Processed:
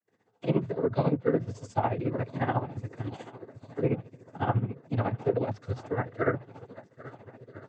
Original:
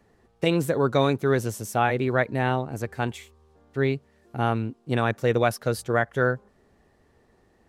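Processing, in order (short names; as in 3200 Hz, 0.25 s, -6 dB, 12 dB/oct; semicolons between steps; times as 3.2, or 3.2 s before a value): harmonic-percussive split percussive -17 dB; gate with hold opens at -57 dBFS; on a send: swung echo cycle 1.32 s, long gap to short 1.5:1, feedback 55%, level -18.5 dB; on the sum: noise vocoder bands 16; tremolo 14 Hz, depth 70%; treble ducked by the level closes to 2100 Hz, closed at -22.5 dBFS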